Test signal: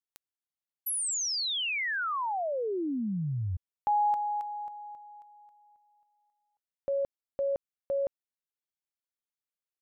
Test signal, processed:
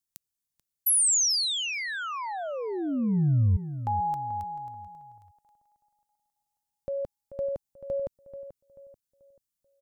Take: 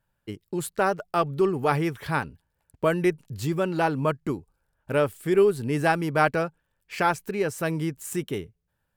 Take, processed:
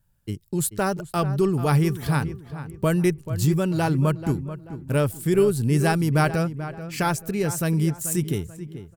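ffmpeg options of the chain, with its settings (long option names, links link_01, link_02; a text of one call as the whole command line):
ffmpeg -i in.wav -filter_complex "[0:a]bass=frequency=250:gain=13,treble=frequency=4000:gain=12,asplit=2[link_01][link_02];[link_02]adelay=436,lowpass=frequency=2300:poles=1,volume=-12dB,asplit=2[link_03][link_04];[link_04]adelay=436,lowpass=frequency=2300:poles=1,volume=0.37,asplit=2[link_05][link_06];[link_06]adelay=436,lowpass=frequency=2300:poles=1,volume=0.37,asplit=2[link_07][link_08];[link_08]adelay=436,lowpass=frequency=2300:poles=1,volume=0.37[link_09];[link_03][link_05][link_07][link_09]amix=inputs=4:normalize=0[link_10];[link_01][link_10]amix=inputs=2:normalize=0,volume=-2.5dB" out.wav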